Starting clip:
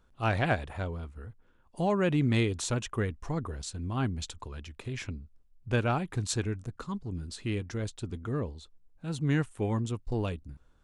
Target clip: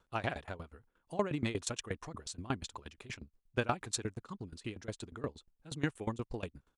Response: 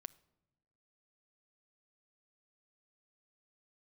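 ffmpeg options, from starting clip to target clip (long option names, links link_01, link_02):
-af "lowshelf=frequency=170:gain=-11,atempo=1.6,aeval=exprs='val(0)*pow(10,-20*if(lt(mod(8.4*n/s,1),2*abs(8.4)/1000),1-mod(8.4*n/s,1)/(2*abs(8.4)/1000),(mod(8.4*n/s,1)-2*abs(8.4)/1000)/(1-2*abs(8.4)/1000))/20)':channel_layout=same,volume=3dB"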